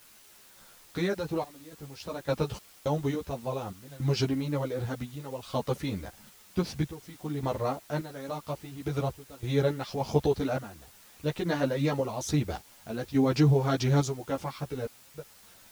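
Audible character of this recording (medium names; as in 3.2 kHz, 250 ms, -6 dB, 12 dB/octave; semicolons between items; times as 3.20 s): random-step tremolo, depth 100%; a quantiser's noise floor 10-bit, dither triangular; a shimmering, thickened sound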